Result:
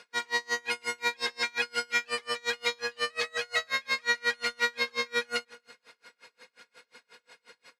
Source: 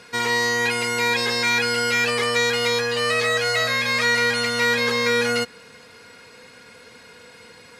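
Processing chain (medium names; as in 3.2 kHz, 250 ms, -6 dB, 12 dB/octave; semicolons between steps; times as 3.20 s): frequency weighting A; delay 269 ms -21 dB; logarithmic tremolo 5.6 Hz, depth 33 dB; trim -4 dB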